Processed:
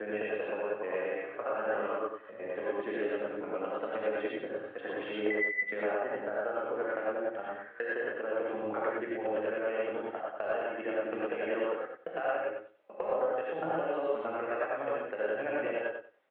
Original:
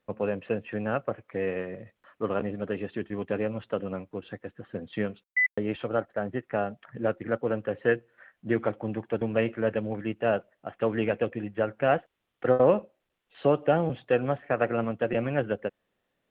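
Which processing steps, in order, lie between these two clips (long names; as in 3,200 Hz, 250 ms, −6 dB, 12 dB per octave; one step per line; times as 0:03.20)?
slices reordered back to front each 104 ms, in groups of 8
high-pass filter 110 Hz
three-way crossover with the lows and the highs turned down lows −23 dB, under 350 Hz, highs −23 dB, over 3,200 Hz
downward compressor 6 to 1, threshold −35 dBFS, peak gain reduction 15 dB
on a send: repeating echo 94 ms, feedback 19%, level −6 dB
on the sum: reverb whose tail is shaped and stops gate 140 ms rising, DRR −5 dB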